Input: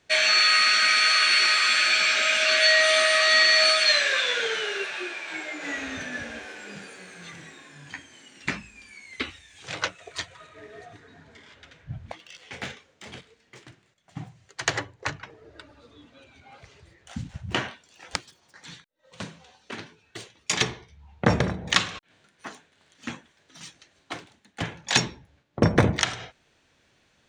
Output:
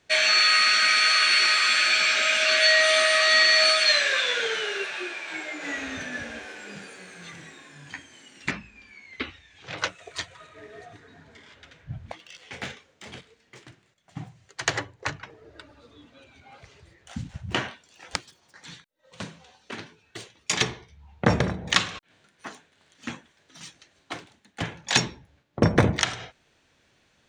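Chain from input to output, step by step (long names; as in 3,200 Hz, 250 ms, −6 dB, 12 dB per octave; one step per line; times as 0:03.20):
0:08.51–0:09.78: high-frequency loss of the air 140 metres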